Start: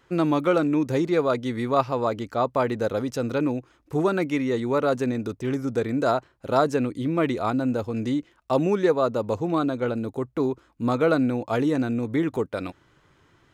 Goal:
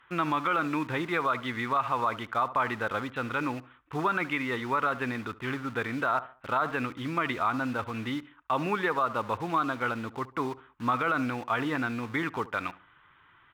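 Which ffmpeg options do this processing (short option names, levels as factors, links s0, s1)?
-filter_complex "[0:a]aresample=8000,aresample=44100,asplit=2[s0][s1];[s1]acrusher=bits=5:mix=0:aa=0.000001,volume=0.251[s2];[s0][s2]amix=inputs=2:normalize=0,lowshelf=f=770:t=q:w=1.5:g=-12.5,asplit=2[s3][s4];[s4]adelay=71,lowpass=f=1800:p=1,volume=0.126,asplit=2[s5][s6];[s6]adelay=71,lowpass=f=1800:p=1,volume=0.36,asplit=2[s7][s8];[s8]adelay=71,lowpass=f=1800:p=1,volume=0.36[s9];[s3][s5][s7][s9]amix=inputs=4:normalize=0,alimiter=limit=0.1:level=0:latency=1:release=54,aemphasis=mode=reproduction:type=cd,volume=1.41"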